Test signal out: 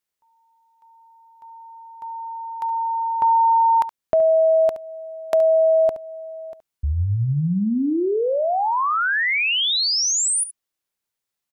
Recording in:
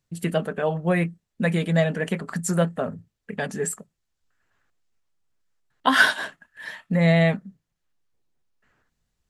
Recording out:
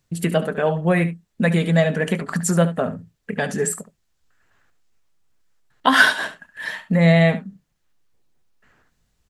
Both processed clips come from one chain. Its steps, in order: in parallel at -0.5 dB: compressor, threshold -32 dBFS; on the sum: echo 71 ms -13.5 dB; gain +2 dB

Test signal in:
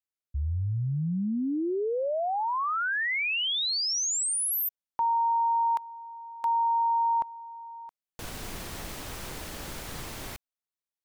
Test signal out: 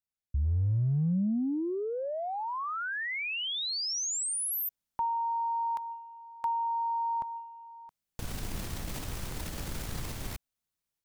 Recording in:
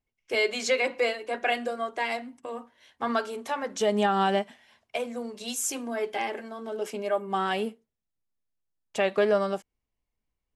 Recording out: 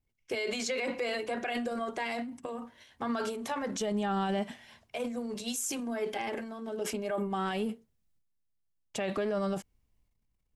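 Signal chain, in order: tone controls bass +9 dB, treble +2 dB; transient shaper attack +6 dB, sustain +10 dB; limiter -18 dBFS; gain -6 dB

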